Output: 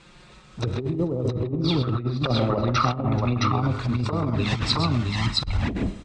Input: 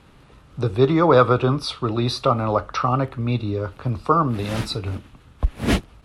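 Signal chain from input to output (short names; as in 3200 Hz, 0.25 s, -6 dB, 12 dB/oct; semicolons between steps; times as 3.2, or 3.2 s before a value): 2.96–5.57 high shelf 4500 Hz +11 dB; envelope flanger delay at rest 6.1 ms, full sweep at -16 dBFS; treble ducked by the level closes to 310 Hz, closed at -14.5 dBFS; elliptic low-pass 8300 Hz, stop band 60 dB; notch 3000 Hz, Q 16; tapped delay 0.103/0.132/0.435/0.667/0.668 s -13/-9/-17/-7.5/-3 dB; reverb RT60 0.75 s, pre-delay 20 ms, DRR 14.5 dB; negative-ratio compressor -23 dBFS, ratio -0.5; high shelf 2000 Hz +10 dB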